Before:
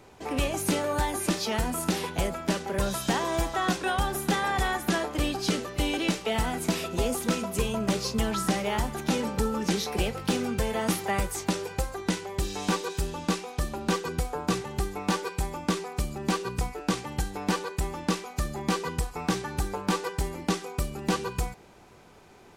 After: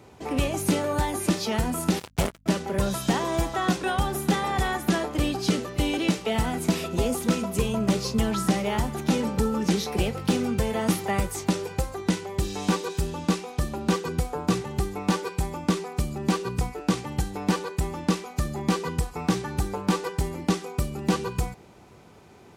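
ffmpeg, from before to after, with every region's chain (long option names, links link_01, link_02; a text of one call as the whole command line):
ffmpeg -i in.wav -filter_complex "[0:a]asettb=1/sr,asplit=3[link_01][link_02][link_03];[link_01]atrim=end=1.994[link_04];[link_02]atrim=start=1.99:end=2.46,asetpts=PTS-STARTPTS,afade=type=in:duration=0.004:curve=qsin,afade=type=out:start_time=0.466:duration=0.004:curve=qsin,bandreject=frequency=121.9:width_type=h:width=4,bandreject=frequency=243.8:width_type=h:width=4,bandreject=frequency=365.7:width_type=h:width=4,bandreject=frequency=487.6:width_type=h:width=4,acrusher=bits=3:mix=0:aa=0.5,aeval=exprs='val(0)+0.000794*(sin(2*PI*50*n/s)+sin(2*PI*2*50*n/s)/2+sin(2*PI*3*50*n/s)/3+sin(2*PI*4*50*n/s)/4+sin(2*PI*5*50*n/s)/5)':channel_layout=same[link_05];[link_03]atrim=start=2.456[link_06];[link_04][link_05]acrossfade=duration=0.004:curve1=hsin:curve2=qsin[link_07];[link_07][link_06]acrossfade=duration=0.004:curve1=qsin:curve2=hsin,highpass=65,lowshelf=frequency=310:gain=6.5,bandreject=frequency=1600:width=26" out.wav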